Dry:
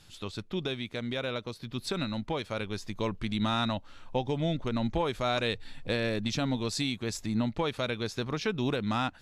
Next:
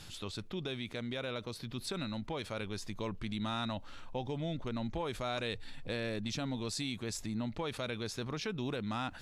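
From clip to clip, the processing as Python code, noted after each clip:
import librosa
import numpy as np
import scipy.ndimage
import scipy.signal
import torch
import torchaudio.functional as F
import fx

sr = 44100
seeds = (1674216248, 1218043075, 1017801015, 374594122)

y = fx.dynamic_eq(x, sr, hz=9200.0, q=2.7, threshold_db=-59.0, ratio=4.0, max_db=4)
y = fx.env_flatten(y, sr, amount_pct=50)
y = y * 10.0 ** (-9.0 / 20.0)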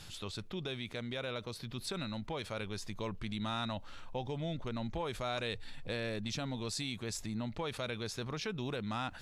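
y = fx.peak_eq(x, sr, hz=280.0, db=-3.5, octaves=0.67)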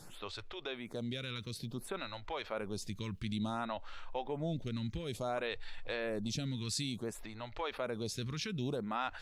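y = fx.stagger_phaser(x, sr, hz=0.57)
y = y * 10.0 ** (3.0 / 20.0)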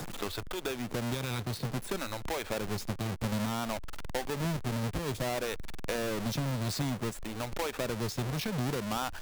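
y = fx.halfwave_hold(x, sr)
y = fx.band_squash(y, sr, depth_pct=70)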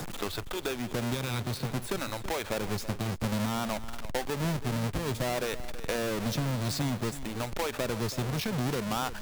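y = x + 10.0 ** (-14.0 / 20.0) * np.pad(x, (int(328 * sr / 1000.0), 0))[:len(x)]
y = y * 10.0 ** (2.0 / 20.0)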